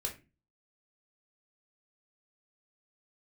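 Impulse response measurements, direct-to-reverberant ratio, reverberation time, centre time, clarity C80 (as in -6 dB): 0.0 dB, 0.30 s, 16 ms, 17.5 dB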